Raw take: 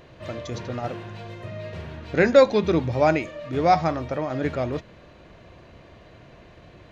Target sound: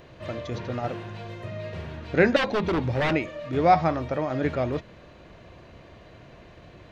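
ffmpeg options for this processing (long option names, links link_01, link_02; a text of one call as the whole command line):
ffmpeg -i in.wav -filter_complex "[0:a]asettb=1/sr,asplit=3[link_01][link_02][link_03];[link_01]atrim=end=2.364[link_04];[link_02]atrim=start=2.36:end=3.13,asetpts=PTS-STARTPTS,afade=type=in:duration=0.004:curve=qsin,afade=type=out:start_time=0.766:duration=0.004:curve=qsin,aeval=exprs='0.119*(abs(mod(val(0)/0.119+3,4)-2)-1)':channel_layout=same[link_05];[link_03]atrim=start=3.126[link_06];[link_04][link_05]acrossfade=duration=0.004:curve1=hsin:curve2=qsin[link_07];[link_07][link_06]acrossfade=duration=0.004:curve1=qsin:curve2=hsin,acrossover=split=4500[link_08][link_09];[link_09]acompressor=threshold=-58dB:ratio=4:attack=1:release=60[link_10];[link_08][link_10]amix=inputs=2:normalize=0" out.wav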